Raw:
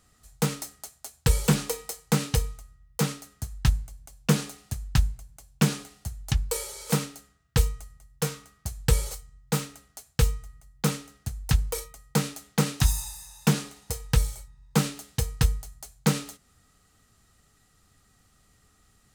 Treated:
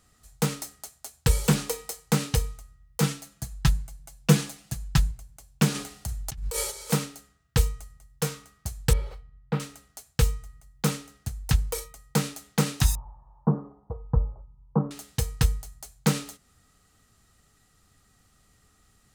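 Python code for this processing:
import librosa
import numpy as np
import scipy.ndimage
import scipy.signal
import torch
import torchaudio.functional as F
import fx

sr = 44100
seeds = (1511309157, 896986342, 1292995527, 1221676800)

y = fx.comb(x, sr, ms=6.0, depth=0.7, at=(3.02, 5.11))
y = fx.over_compress(y, sr, threshold_db=-33.0, ratio=-1.0, at=(5.74, 6.7), fade=0.02)
y = fx.air_absorb(y, sr, metres=410.0, at=(8.93, 9.6))
y = fx.ellip_lowpass(y, sr, hz=1100.0, order=4, stop_db=60, at=(12.95, 14.91))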